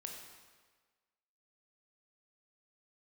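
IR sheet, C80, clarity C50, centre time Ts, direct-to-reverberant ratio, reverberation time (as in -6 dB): 5.0 dB, 3.5 dB, 53 ms, 1.0 dB, 1.5 s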